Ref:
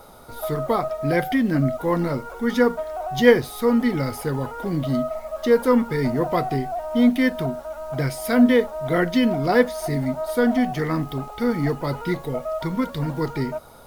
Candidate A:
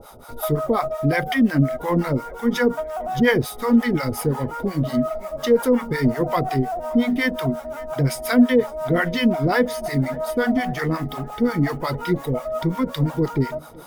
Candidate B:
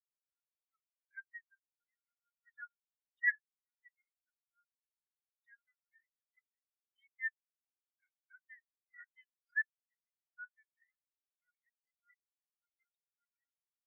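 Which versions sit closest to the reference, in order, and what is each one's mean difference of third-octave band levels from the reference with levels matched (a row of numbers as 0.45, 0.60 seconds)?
A, B; 4.5, 22.0 decibels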